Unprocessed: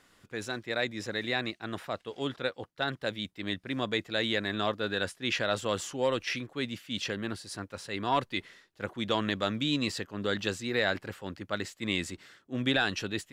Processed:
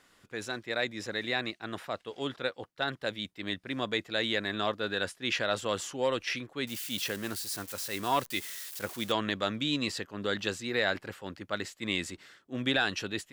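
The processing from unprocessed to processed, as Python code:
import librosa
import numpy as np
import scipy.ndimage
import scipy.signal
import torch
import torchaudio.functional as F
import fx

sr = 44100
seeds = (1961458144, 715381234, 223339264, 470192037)

y = fx.crossing_spikes(x, sr, level_db=-32.0, at=(6.67, 9.12))
y = fx.low_shelf(y, sr, hz=240.0, db=-4.5)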